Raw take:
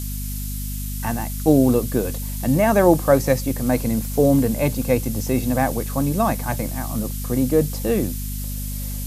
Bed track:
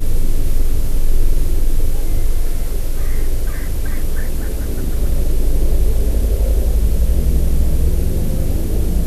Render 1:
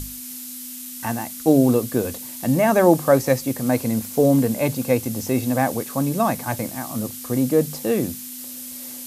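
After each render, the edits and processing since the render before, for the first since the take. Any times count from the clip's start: notches 50/100/150/200 Hz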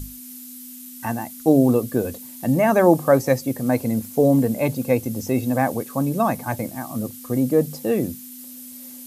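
denoiser 8 dB, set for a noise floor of -35 dBFS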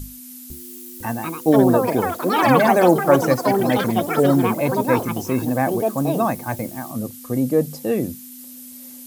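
echoes that change speed 0.502 s, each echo +6 st, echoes 3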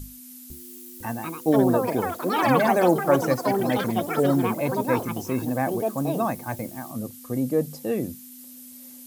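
gain -5 dB

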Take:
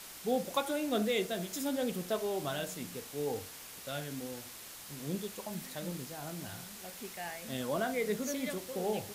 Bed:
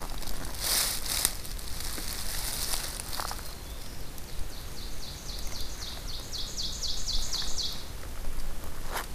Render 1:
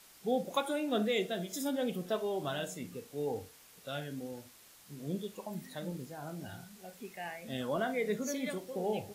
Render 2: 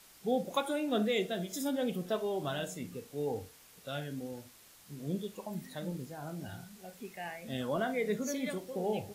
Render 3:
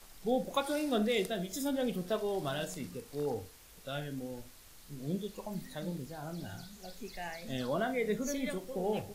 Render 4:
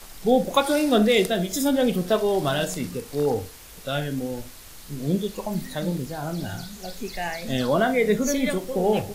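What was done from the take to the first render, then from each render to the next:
noise print and reduce 10 dB
low shelf 160 Hz +4 dB
add bed -22.5 dB
gain +12 dB

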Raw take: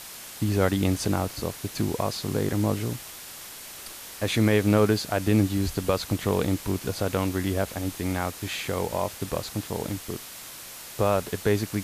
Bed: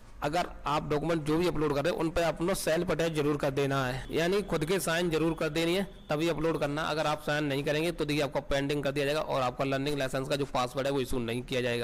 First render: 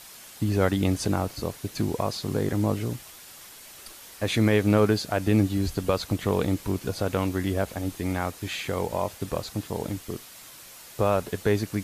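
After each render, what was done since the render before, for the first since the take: denoiser 6 dB, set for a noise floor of -42 dBFS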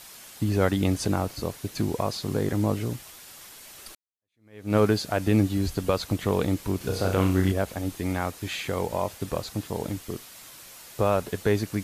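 3.95–4.76 fade in exponential; 6.77–7.52 flutter echo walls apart 5.5 m, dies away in 0.46 s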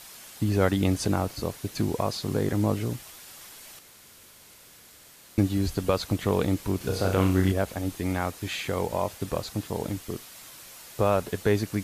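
3.79–5.38 room tone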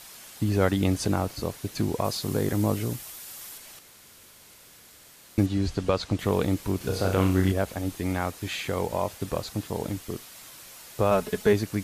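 2.04–3.58 high shelf 7800 Hz +8.5 dB; 5.46–6.19 LPF 6700 Hz; 11.11–11.53 comb 4.7 ms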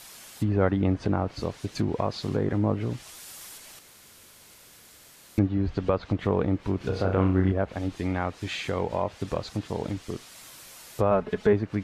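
treble ducked by the level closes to 1700 Hz, closed at -21 dBFS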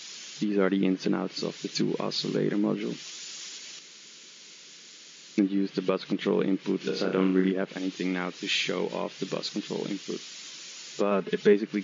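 FFT band-pass 150–7200 Hz; EQ curve 260 Hz 0 dB, 380 Hz +3 dB, 720 Hz -9 dB, 3000 Hz +8 dB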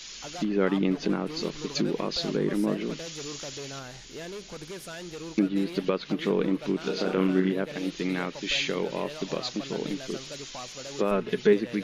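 add bed -11.5 dB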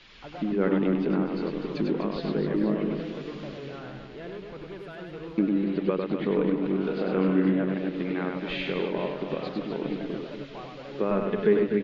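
air absorption 430 m; reverse bouncing-ball echo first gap 0.1 s, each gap 1.5×, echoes 5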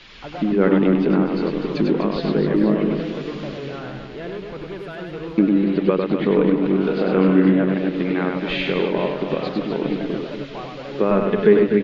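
gain +8 dB

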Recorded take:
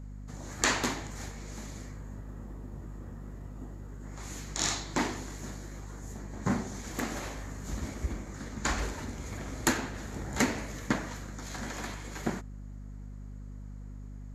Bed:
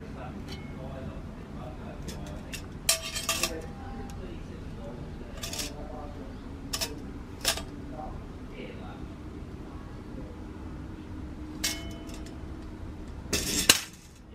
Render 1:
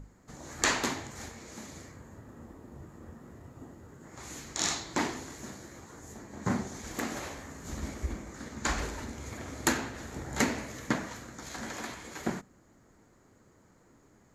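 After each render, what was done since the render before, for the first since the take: notches 50/100/150/200/250 Hz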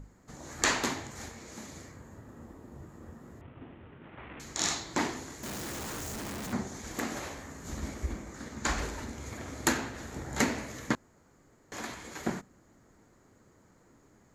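3.41–4.4 CVSD 16 kbps; 5.43–6.53 infinite clipping; 10.95–11.72 room tone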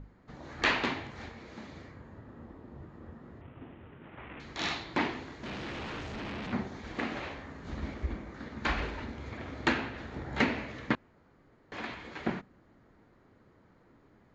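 LPF 4000 Hz 24 dB/oct; dynamic EQ 2600 Hz, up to +5 dB, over -53 dBFS, Q 2.3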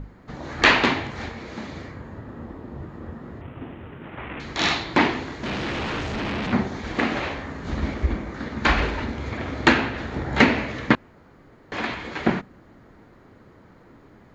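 gain +11.5 dB

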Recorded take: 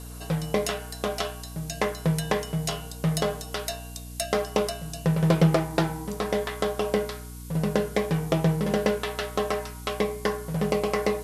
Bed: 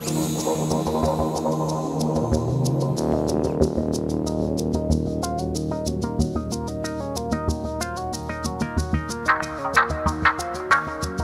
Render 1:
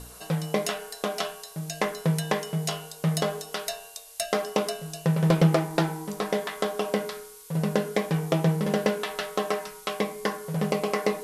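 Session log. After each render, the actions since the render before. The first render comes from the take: de-hum 60 Hz, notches 7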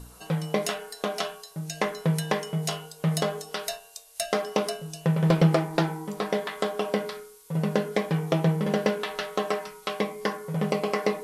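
noise print and reduce 6 dB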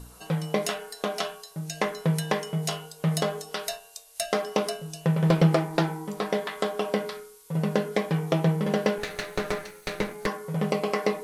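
8.98–10.27 minimum comb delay 0.47 ms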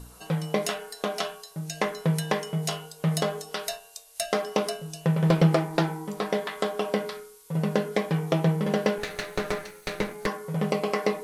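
nothing audible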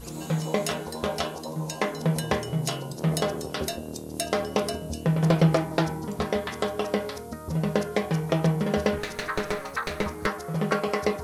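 add bed -13 dB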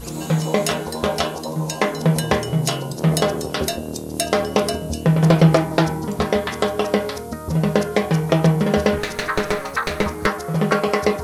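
gain +7.5 dB; limiter -3 dBFS, peak gain reduction 1.5 dB

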